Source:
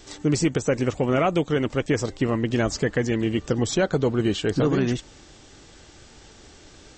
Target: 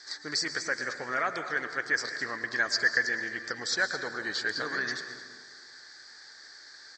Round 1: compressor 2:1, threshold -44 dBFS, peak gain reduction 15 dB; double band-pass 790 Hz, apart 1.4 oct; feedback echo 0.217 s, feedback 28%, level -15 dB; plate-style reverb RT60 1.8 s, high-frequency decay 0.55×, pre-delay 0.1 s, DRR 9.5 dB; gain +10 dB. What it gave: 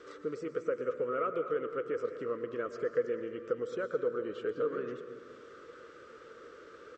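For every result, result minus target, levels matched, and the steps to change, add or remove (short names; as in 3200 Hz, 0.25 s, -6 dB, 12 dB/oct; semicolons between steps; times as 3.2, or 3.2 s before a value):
compressor: peak gain reduction +15 dB; 2000 Hz band -14.0 dB
remove: compressor 2:1, threshold -44 dBFS, peak gain reduction 15 dB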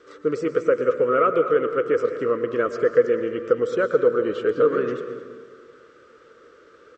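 2000 Hz band -14.0 dB
change: double band-pass 2800 Hz, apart 1.4 oct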